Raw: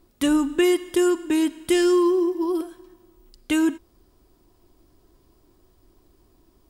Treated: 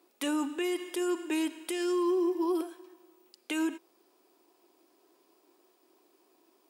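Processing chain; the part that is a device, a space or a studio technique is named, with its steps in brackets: laptop speaker (HPF 320 Hz 24 dB/oct; bell 820 Hz +4 dB 0.28 oct; bell 2500 Hz +6 dB 0.25 oct; limiter -20.5 dBFS, peak gain reduction 12 dB); gain -2.5 dB

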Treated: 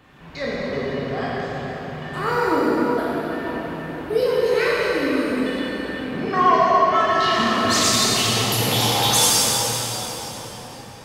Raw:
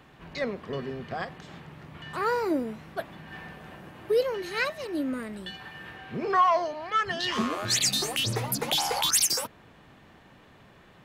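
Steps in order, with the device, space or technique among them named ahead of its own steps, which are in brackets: cathedral (reverb RT60 5.0 s, pre-delay 12 ms, DRR -8.5 dB)

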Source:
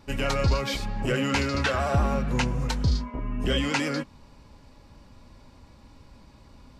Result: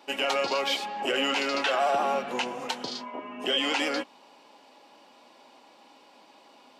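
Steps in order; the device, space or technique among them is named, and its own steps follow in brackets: laptop speaker (HPF 300 Hz 24 dB/oct; bell 760 Hz +9 dB 0.51 oct; bell 3000 Hz +8.5 dB 0.58 oct; limiter -16.5 dBFS, peak gain reduction 9.5 dB)

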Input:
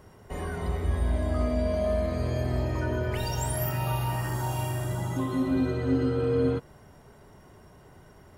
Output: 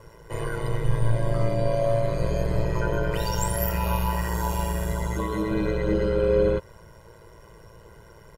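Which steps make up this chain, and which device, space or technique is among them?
ring-modulated robot voice (ring modulator 56 Hz; comb 2 ms, depth 78%); gain +4.5 dB

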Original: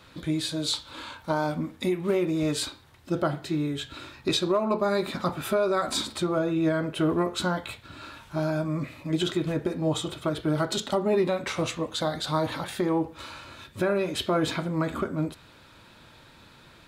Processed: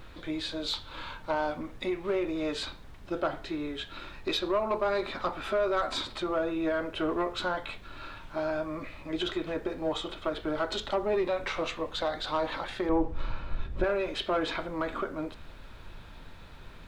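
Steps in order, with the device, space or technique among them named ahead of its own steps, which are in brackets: aircraft cabin announcement (BPF 400–3700 Hz; soft clip -19.5 dBFS, distortion -19 dB; brown noise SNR 13 dB); 12.89–13.84 tilt -3 dB/oct

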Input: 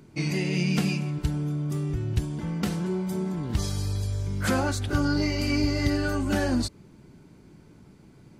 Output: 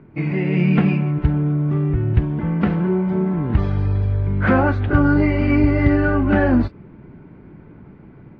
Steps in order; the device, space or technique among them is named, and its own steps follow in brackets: action camera in a waterproof case (LPF 2200 Hz 24 dB/oct; AGC gain up to 4 dB; gain +5.5 dB; AAC 48 kbps 22050 Hz)

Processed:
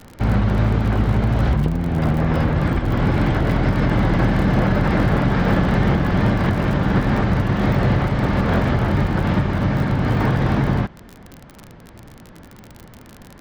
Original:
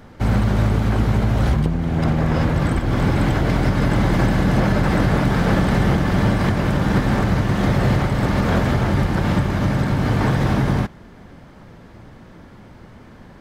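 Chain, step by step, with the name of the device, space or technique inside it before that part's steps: lo-fi chain (LPF 4000 Hz 12 dB/oct; wow and flutter; crackle 47/s -26 dBFS)

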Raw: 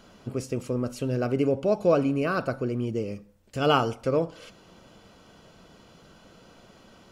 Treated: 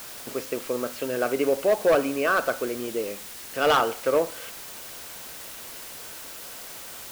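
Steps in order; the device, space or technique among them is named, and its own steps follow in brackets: drive-through speaker (BPF 450–3500 Hz; bell 1700 Hz +5.5 dB 0.39 oct; hard clip -20 dBFS, distortion -12 dB; white noise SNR 13 dB); gain +5.5 dB

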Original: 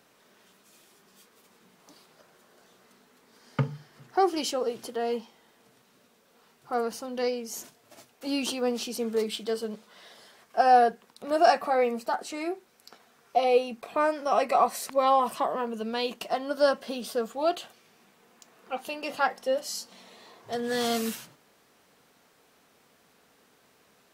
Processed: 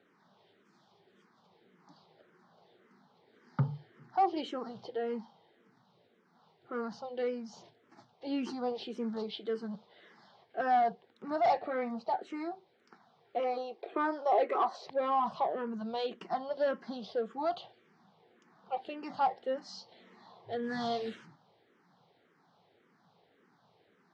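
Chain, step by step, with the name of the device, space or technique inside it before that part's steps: barber-pole phaser into a guitar amplifier (endless phaser -1.8 Hz; soft clip -21.5 dBFS, distortion -12 dB; speaker cabinet 110–4300 Hz, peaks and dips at 110 Hz +10 dB, 170 Hz +9 dB, 360 Hz +5 dB, 820 Hz +6 dB, 2600 Hz -8 dB); 13.4–14.87 resonant low shelf 250 Hz -12.5 dB, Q 3; gain -3.5 dB

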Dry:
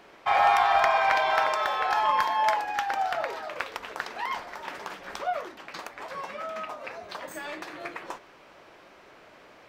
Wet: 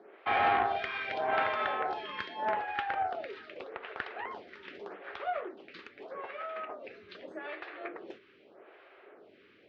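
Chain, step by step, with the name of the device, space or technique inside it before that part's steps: vibe pedal into a guitar amplifier (photocell phaser 0.82 Hz; tube stage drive 18 dB, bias 0.5; speaker cabinet 100–3500 Hz, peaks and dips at 150 Hz -10 dB, 400 Hz +9 dB, 980 Hz -8 dB)

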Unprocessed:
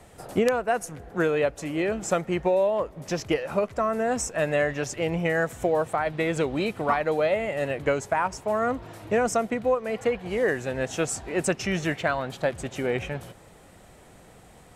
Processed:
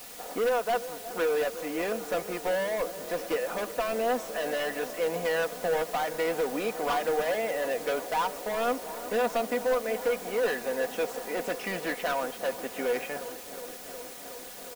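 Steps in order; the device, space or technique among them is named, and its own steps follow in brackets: aircraft radio (BPF 380–2300 Hz; hard clip -26 dBFS, distortion -8 dB; white noise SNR 14 dB); comb 4.1 ms, depth 50%; dark delay 0.364 s, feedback 82%, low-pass 1400 Hz, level -14.5 dB

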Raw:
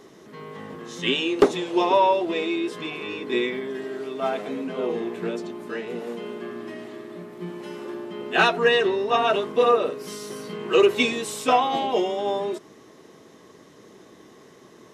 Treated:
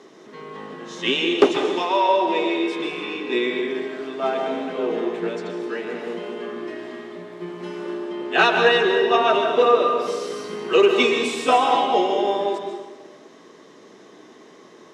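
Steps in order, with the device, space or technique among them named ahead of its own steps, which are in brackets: 1.57–2.09 HPF 950 Hz 6 dB/oct; supermarket ceiling speaker (BPF 220–6800 Hz; reverb RT60 1.3 s, pre-delay 0.12 s, DRR 3.5 dB); gain +2 dB

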